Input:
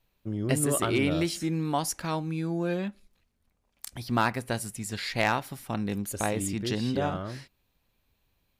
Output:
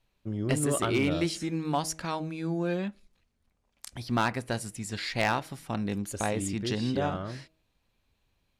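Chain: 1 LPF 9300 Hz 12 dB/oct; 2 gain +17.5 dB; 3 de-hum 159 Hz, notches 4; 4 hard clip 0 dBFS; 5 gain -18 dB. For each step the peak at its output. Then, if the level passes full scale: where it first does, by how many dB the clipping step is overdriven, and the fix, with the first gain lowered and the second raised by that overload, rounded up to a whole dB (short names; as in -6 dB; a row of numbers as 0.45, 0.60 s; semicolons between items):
-13.0, +4.5, +4.5, 0.0, -18.0 dBFS; step 2, 4.5 dB; step 2 +12.5 dB, step 5 -13 dB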